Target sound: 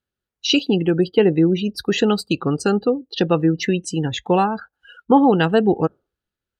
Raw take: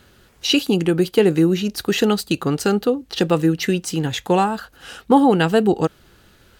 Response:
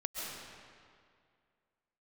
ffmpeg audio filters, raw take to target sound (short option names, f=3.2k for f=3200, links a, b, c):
-af "afftdn=nr=35:nf=-30"